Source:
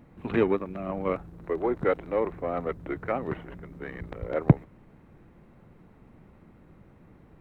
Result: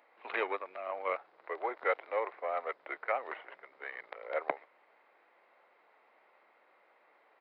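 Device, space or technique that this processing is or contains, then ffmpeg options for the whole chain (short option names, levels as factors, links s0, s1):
musical greeting card: -af "aresample=11025,aresample=44100,highpass=f=580:w=0.5412,highpass=f=580:w=1.3066,equalizer=f=2100:t=o:w=0.28:g=5,volume=0.841"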